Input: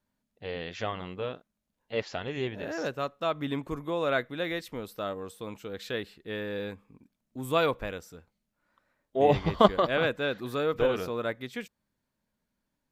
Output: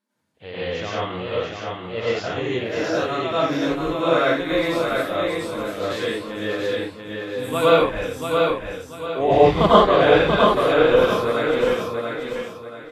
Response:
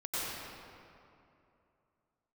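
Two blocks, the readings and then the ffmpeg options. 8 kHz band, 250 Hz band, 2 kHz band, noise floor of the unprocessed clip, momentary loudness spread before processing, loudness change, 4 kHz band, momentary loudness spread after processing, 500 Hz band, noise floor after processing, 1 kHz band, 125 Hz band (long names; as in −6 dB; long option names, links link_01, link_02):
+10.5 dB, +10.0 dB, +10.0 dB, −83 dBFS, 16 LU, +10.0 dB, +10.5 dB, 14 LU, +11.0 dB, −39 dBFS, +11.0 dB, +8.0 dB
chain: -filter_complex "[0:a]aecho=1:1:687|1374|2061|2748:0.631|0.208|0.0687|0.0227[link_01];[1:a]atrim=start_sample=2205,afade=type=out:start_time=0.24:duration=0.01,atrim=end_sample=11025[link_02];[link_01][link_02]afir=irnorm=-1:irlink=0,volume=6dB" -ar 32000 -c:a libvorbis -b:a 32k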